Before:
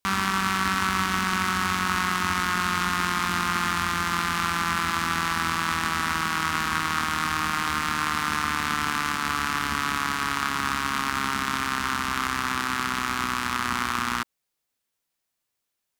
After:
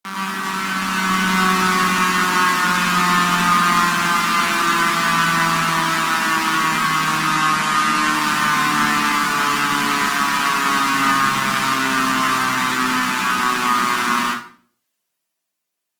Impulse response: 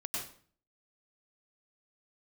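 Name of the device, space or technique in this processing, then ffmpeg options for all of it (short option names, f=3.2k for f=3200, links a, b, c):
far-field microphone of a smart speaker: -filter_complex "[0:a]asettb=1/sr,asplit=3[a][b][c];[a]atrim=end=7.184[d];[b]atrim=start=7.18:end=8.07,asetpts=PTS-STARTPTS,afade=t=in:d=0.004:c=qsin,afade=t=out:st=0.886:d=0.004:c=qsin,lowpass=f=12k:w=0.5412,lowpass=f=12k:w=1.3066[e];[c]atrim=start=8.066[f];[d][e]acrossfade=d=0.004:c1=hsin:c2=qsin[g];[g][f]acrossfade=d=0.004:c1=qsin:c2=hsin[h];[1:a]atrim=start_sample=2205[i];[h][i]afir=irnorm=-1:irlink=0,highpass=f=150:w=0.5412,highpass=f=150:w=1.3066,dynaudnorm=f=100:g=21:m=8.5dB" -ar 48000 -c:a libopus -b:a 24k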